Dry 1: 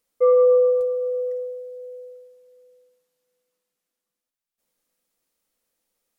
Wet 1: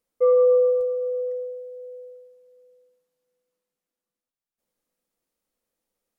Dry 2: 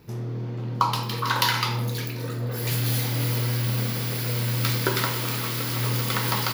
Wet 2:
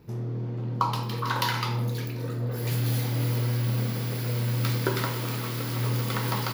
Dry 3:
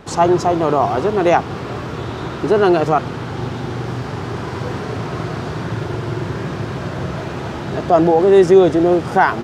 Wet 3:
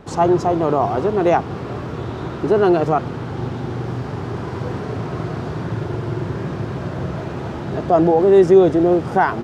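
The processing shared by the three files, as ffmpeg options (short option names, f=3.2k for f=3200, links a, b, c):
-af "tiltshelf=f=1.2k:g=3.5,volume=-4dB"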